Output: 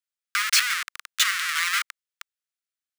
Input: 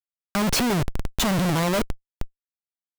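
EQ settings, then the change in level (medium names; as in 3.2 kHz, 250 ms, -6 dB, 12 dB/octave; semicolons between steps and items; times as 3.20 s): steep high-pass 1.2 kHz 72 dB/octave; peaking EQ 16 kHz -14.5 dB 0.24 oct; dynamic bell 2 kHz, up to +5 dB, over -44 dBFS, Q 2.4; +4.5 dB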